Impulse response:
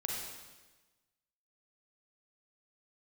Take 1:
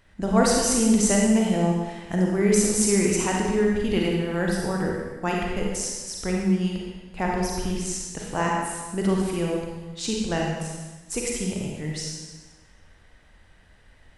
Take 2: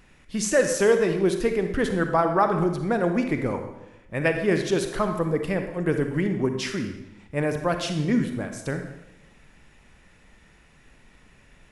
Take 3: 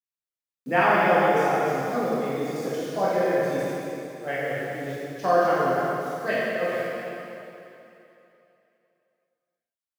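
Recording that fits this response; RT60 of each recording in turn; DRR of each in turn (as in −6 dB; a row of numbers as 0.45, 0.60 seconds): 1; 1.2, 0.90, 3.0 seconds; −2.0, 6.0, −9.0 decibels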